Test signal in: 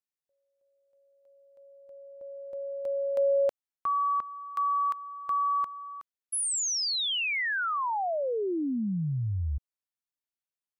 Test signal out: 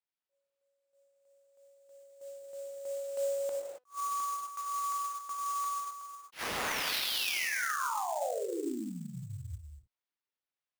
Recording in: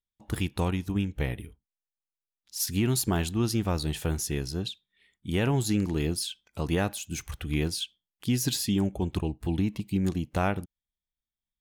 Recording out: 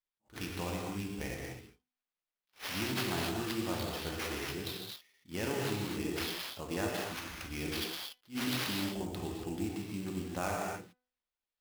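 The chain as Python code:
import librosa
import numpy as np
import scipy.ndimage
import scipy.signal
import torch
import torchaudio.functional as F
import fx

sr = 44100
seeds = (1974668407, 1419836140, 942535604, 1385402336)

p1 = fx.level_steps(x, sr, step_db=23)
p2 = x + (p1 * 10.0 ** (-1.0 / 20.0))
p3 = fx.rev_gated(p2, sr, seeds[0], gate_ms=300, shape='flat', drr_db=-2.5)
p4 = fx.sample_hold(p3, sr, seeds[1], rate_hz=8000.0, jitter_pct=20)
p5 = fx.low_shelf(p4, sr, hz=220.0, db=-10.5)
p6 = fx.comb_fb(p5, sr, f0_hz=250.0, decay_s=0.5, harmonics='all', damping=0.2, mix_pct=40)
p7 = fx.attack_slew(p6, sr, db_per_s=290.0)
y = p7 * 10.0 ** (-5.0 / 20.0)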